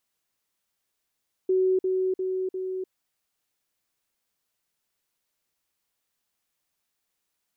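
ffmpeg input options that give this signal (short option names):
-f lavfi -i "aevalsrc='pow(10,(-19-3*floor(t/0.35))/20)*sin(2*PI*374*t)*clip(min(mod(t,0.35),0.3-mod(t,0.35))/0.005,0,1)':d=1.4:s=44100"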